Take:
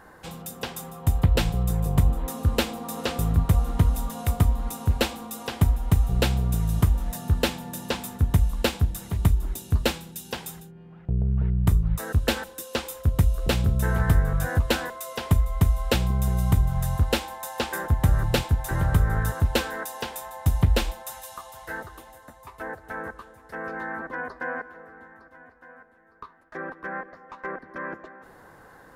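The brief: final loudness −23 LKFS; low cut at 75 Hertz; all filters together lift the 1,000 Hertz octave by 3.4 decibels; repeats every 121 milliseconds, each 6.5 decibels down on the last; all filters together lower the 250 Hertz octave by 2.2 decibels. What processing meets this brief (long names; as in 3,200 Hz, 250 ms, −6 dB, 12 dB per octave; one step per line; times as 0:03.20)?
high-pass filter 75 Hz
parametric band 250 Hz −3.5 dB
parametric band 1,000 Hz +4.5 dB
repeating echo 121 ms, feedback 47%, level −6.5 dB
level +4 dB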